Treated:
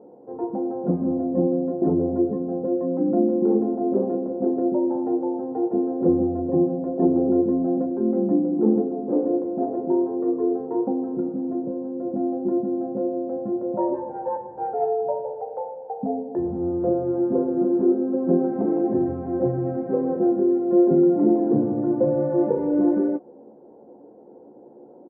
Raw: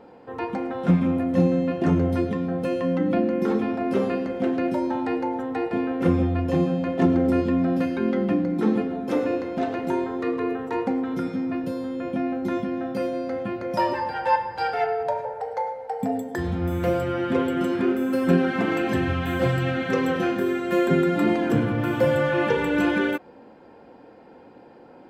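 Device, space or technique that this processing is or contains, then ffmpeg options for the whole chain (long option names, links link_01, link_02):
under water: -filter_complex "[0:a]highpass=210,lowpass=frequency=710:width=0.5412,lowpass=frequency=710:width=1.3066,lowshelf=frequency=81:gain=9,equalizer=frequency=380:width_type=o:width=0.32:gain=5,highshelf=frequency=2600:gain=9.5,asplit=2[link_01][link_02];[link_02]adelay=14,volume=-7.5dB[link_03];[link_01][link_03]amix=inputs=2:normalize=0"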